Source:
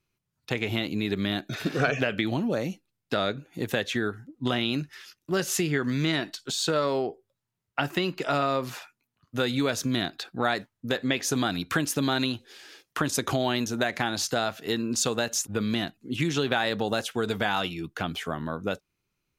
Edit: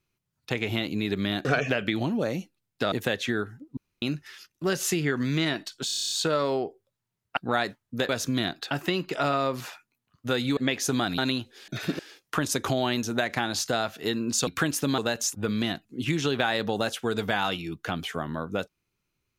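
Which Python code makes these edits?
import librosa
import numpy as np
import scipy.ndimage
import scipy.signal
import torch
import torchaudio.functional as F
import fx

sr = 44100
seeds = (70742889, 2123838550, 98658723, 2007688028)

y = fx.edit(x, sr, fx.move(start_s=1.45, length_s=0.31, to_s=12.62),
    fx.cut(start_s=3.23, length_s=0.36),
    fx.room_tone_fill(start_s=4.44, length_s=0.25),
    fx.stutter(start_s=6.53, slice_s=0.03, count=9),
    fx.swap(start_s=7.8, length_s=1.86, other_s=10.28, other_length_s=0.72),
    fx.move(start_s=11.61, length_s=0.51, to_s=15.1), tone=tone)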